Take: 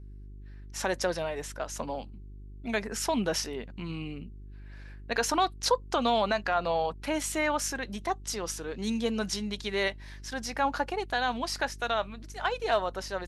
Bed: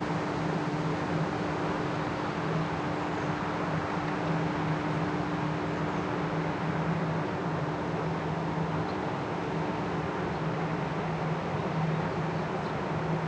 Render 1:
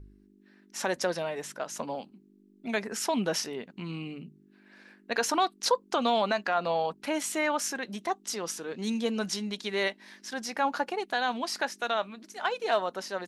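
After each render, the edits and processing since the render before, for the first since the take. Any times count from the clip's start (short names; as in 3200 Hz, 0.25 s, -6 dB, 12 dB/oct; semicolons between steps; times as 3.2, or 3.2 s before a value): de-hum 50 Hz, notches 3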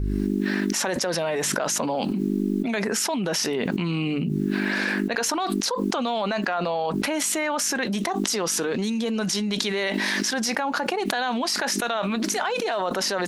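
limiter -19.5 dBFS, peak gain reduction 6.5 dB; fast leveller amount 100%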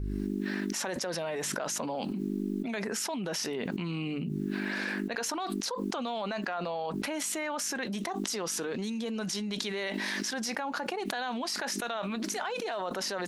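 gain -8.5 dB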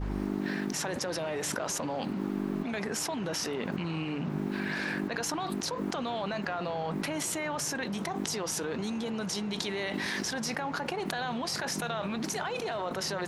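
add bed -12.5 dB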